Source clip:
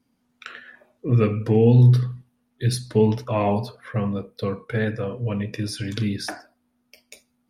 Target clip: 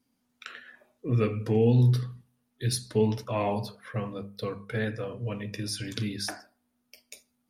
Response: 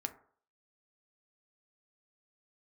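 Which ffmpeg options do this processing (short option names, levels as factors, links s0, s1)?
-filter_complex "[0:a]highshelf=f=4500:g=10,bandreject=f=50:t=h:w=6,bandreject=f=100:t=h:w=6,bandreject=f=150:t=h:w=6,bandreject=f=200:t=h:w=6,asplit=2[s0][s1];[1:a]atrim=start_sample=2205,lowpass=7800[s2];[s1][s2]afir=irnorm=-1:irlink=0,volume=0.299[s3];[s0][s3]amix=inputs=2:normalize=0,volume=0.398"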